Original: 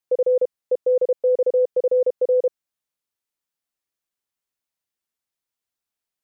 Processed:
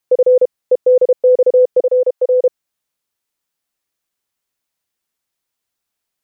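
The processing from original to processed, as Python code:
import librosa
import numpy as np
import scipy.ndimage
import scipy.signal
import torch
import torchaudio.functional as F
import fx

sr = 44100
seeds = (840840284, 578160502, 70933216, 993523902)

y = fx.highpass(x, sr, hz=500.0, slope=24, at=(1.8, 2.44))
y = y * 10.0 ** (8.0 / 20.0)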